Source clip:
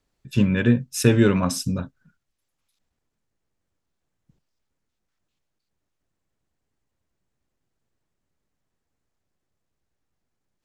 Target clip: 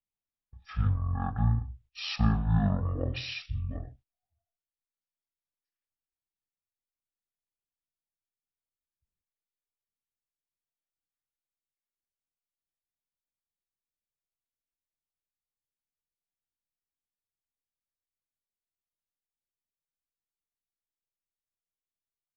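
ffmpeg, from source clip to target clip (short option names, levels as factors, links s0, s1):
-af "asetrate=20992,aresample=44100,agate=range=0.141:threshold=0.00447:ratio=16:detection=peak,volume=0.355"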